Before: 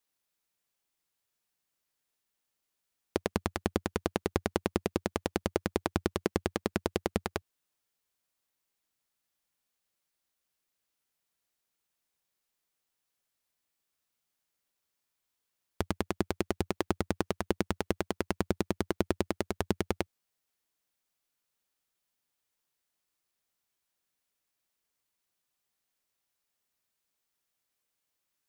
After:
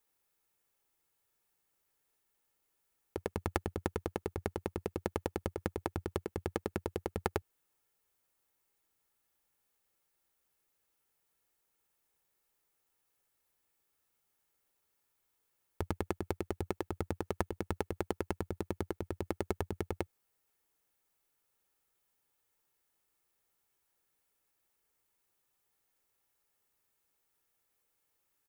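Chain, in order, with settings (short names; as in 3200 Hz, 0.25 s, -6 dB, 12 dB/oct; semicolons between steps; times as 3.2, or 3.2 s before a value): bell 4400 Hz -7 dB 1.9 oct; comb 2.3 ms, depth 32%; negative-ratio compressor -34 dBFS, ratio -1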